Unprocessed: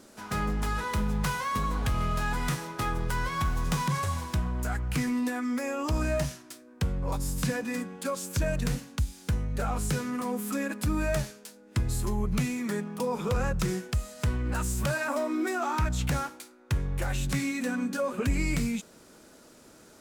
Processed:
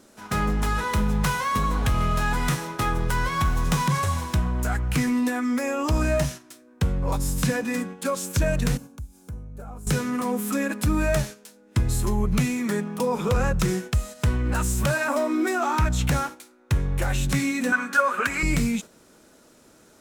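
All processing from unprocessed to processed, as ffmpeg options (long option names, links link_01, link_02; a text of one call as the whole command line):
ffmpeg -i in.wav -filter_complex "[0:a]asettb=1/sr,asplit=3[link_01][link_02][link_03];[link_01]atrim=end=8.774[link_04];[link_02]atrim=start=8.77:end=9.87,asetpts=PTS-STARTPTS,afade=type=in:duration=0.004:curve=qsin,afade=type=out:start_time=1.096:duration=0.004:curve=qsin,equalizer=frequency=3300:width_type=o:width=2.1:gain=-13.5,acompressor=threshold=-43dB:ratio=2.5:attack=3.2:release=140:knee=1:detection=peak,asuperstop=centerf=1900:order=8:qfactor=6.6[link_05];[link_03]atrim=start=9.866[link_06];[link_04][link_05]acrossfade=duration=0.004:curve1=hsin:curve2=qsin[link_07];[link_07][link_06]acrossfade=duration=0.004:curve1=qsin:curve2=hsin,asettb=1/sr,asplit=3[link_08][link_09][link_10];[link_08]atrim=end=17.724[link_11];[link_09]atrim=start=17.72:end=18.43,asetpts=PTS-STARTPTS,afade=type=in:duration=0.004:curve=qsin,afade=type=out:start_time=0.706:duration=0.004:curve=qsin,highpass=frequency=810:poles=1,equalizer=frequency=1400:width_type=o:width=1.1:gain=14[link_12];[link_10]atrim=start=18.426[link_13];[link_11][link_12]acrossfade=duration=0.004:curve1=hsin:curve2=qsin[link_14];[link_14][link_13]acrossfade=duration=0.004:curve1=qsin:curve2=hsin,agate=range=-6dB:threshold=-40dB:ratio=16:detection=peak,bandreject=frequency=4700:width=21,volume=5.5dB" out.wav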